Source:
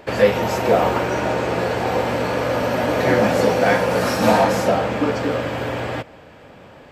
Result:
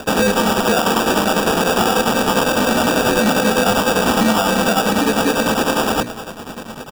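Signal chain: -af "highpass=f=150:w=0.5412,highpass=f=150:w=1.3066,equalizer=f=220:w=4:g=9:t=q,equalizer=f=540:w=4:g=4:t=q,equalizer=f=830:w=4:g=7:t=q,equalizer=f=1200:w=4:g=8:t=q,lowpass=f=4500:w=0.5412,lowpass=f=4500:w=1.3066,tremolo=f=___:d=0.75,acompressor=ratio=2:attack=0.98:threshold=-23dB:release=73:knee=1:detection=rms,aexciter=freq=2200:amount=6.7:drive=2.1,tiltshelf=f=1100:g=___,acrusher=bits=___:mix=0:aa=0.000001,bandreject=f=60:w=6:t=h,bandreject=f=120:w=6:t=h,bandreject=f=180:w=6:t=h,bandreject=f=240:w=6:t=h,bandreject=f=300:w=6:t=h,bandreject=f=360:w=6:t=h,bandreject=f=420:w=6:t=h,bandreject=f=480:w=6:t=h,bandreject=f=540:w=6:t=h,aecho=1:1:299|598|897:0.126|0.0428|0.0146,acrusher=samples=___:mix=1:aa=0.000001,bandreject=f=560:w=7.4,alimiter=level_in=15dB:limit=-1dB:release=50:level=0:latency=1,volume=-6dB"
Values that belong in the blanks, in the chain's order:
10, 5.5, 6, 21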